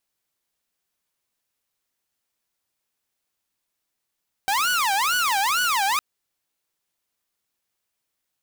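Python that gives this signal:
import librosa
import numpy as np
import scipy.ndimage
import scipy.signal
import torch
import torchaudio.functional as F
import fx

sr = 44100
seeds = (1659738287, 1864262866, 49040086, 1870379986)

y = fx.siren(sr, length_s=1.51, kind='wail', low_hz=775.0, high_hz=1480.0, per_s=2.2, wave='saw', level_db=-17.0)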